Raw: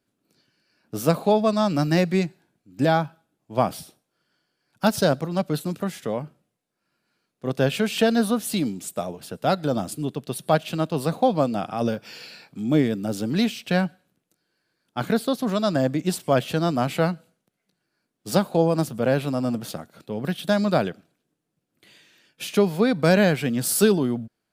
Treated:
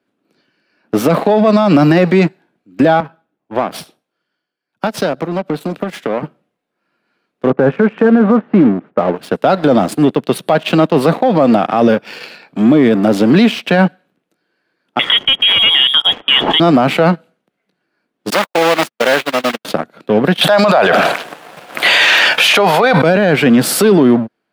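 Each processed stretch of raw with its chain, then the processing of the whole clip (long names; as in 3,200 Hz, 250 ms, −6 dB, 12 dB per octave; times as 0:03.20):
0:03.00–0:06.23: downward compressor, threshold −31 dBFS + multiband upward and downward expander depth 40%
0:07.50–0:09.16: low-pass filter 1,600 Hz 24 dB per octave + notch filter 670 Hz, Q 8.9
0:14.99–0:16.60: high-shelf EQ 2,600 Hz +9 dB + hard clipping −15.5 dBFS + voice inversion scrambler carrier 3,500 Hz
0:18.30–0:19.65: one scale factor per block 3 bits + high-pass filter 1,100 Hz 6 dB per octave + noise gate −35 dBFS, range −53 dB
0:20.41–0:23.02: low shelf with overshoot 470 Hz −13.5 dB, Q 1.5 + envelope flattener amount 100%
whole clip: leveller curve on the samples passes 2; three-way crossover with the lows and the highs turned down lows −16 dB, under 180 Hz, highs −15 dB, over 3,500 Hz; boost into a limiter +14 dB; level −1 dB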